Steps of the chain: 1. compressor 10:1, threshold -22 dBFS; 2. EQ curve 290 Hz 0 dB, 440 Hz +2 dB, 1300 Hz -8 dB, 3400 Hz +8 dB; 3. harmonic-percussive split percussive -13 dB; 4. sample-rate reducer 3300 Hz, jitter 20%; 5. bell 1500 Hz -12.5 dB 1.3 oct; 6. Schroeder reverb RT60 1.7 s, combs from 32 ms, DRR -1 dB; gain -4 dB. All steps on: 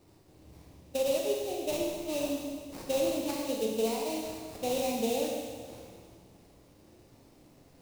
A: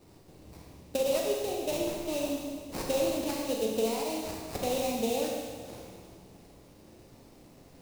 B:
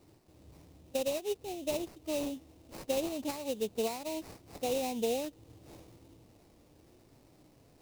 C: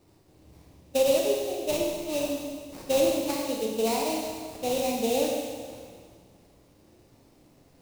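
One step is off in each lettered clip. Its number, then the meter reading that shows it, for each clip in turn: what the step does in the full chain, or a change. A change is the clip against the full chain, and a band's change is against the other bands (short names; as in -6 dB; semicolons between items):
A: 3, 125 Hz band +2.5 dB; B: 6, momentary loudness spread change +5 LU; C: 1, mean gain reduction 2.0 dB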